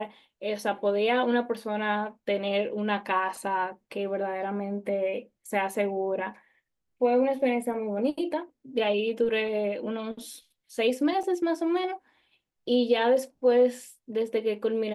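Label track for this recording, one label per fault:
11.230000	11.230000	drop-out 4.9 ms

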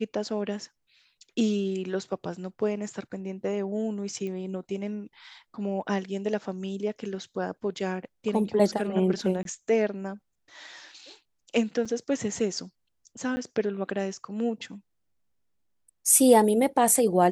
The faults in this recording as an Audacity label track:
4.270000	4.270000	click −25 dBFS
9.430000	9.450000	drop-out 22 ms
11.850000	11.860000	drop-out 5.6 ms
13.360000	13.370000	drop-out 10 ms

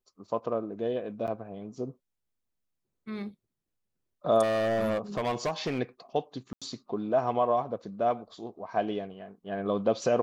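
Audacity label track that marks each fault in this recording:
1.270000	1.280000	drop-out 8.2 ms
4.420000	5.800000	clipping −25 dBFS
6.530000	6.620000	drop-out 86 ms

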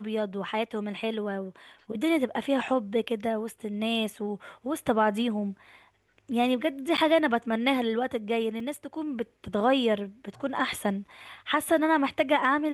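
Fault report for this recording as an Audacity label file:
6.970000	6.980000	drop-out 9.2 ms
8.600000	8.600000	drop-out 3 ms

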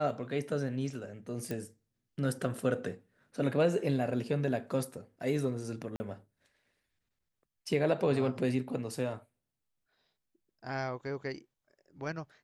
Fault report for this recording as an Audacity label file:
1.510000	1.510000	click
5.960000	6.000000	drop-out 40 ms

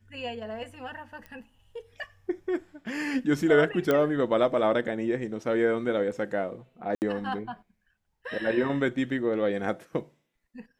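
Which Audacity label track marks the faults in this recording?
1.260000	1.260000	click −29 dBFS
3.910000	3.910000	click −12 dBFS
6.950000	7.020000	drop-out 69 ms

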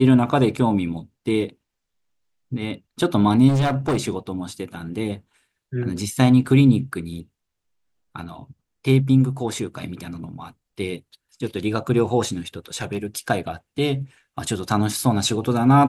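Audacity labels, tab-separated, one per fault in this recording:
3.480000	4.000000	clipping −16.5 dBFS
12.750000	12.980000	clipping −18.5 dBFS

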